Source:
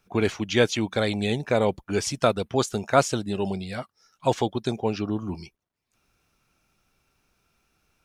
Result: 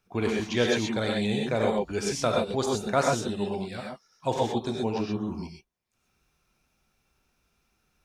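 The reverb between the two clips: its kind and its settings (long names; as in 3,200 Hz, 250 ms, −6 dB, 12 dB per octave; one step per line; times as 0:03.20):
reverb whose tail is shaped and stops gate 150 ms rising, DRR −1 dB
level −6 dB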